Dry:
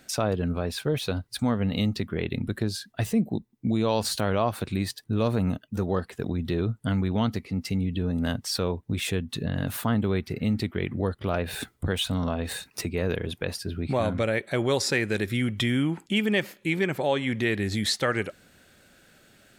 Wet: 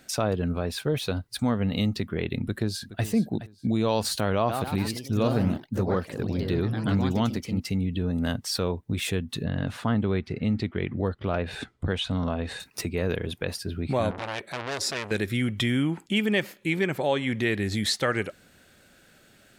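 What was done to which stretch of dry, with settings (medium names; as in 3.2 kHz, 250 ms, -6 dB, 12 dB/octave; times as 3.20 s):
2.40–3.04 s: echo throw 420 ms, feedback 25%, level -14 dB
4.35–7.84 s: ever faster or slower copies 142 ms, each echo +2 st, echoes 3, each echo -6 dB
9.44–12.60 s: distance through air 93 m
14.11–15.11 s: transformer saturation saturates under 3.5 kHz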